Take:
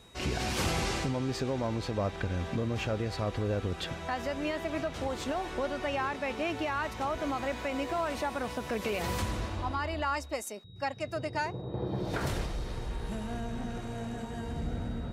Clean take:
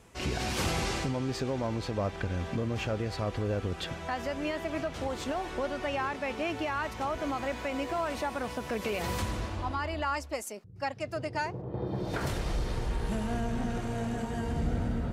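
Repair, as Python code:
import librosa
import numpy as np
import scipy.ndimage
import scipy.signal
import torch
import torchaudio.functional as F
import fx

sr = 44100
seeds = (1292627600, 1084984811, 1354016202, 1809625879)

y = fx.notch(x, sr, hz=3800.0, q=30.0)
y = fx.fix_level(y, sr, at_s=12.46, step_db=4.5)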